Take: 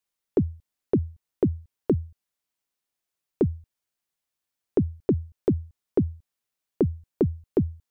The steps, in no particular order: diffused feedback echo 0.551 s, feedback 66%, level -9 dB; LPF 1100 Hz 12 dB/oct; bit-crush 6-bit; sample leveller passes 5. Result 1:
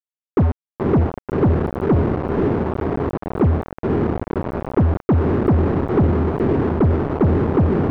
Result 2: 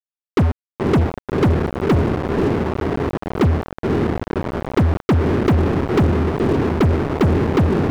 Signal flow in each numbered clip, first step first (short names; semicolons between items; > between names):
diffused feedback echo > bit-crush > sample leveller > LPF; diffused feedback echo > bit-crush > LPF > sample leveller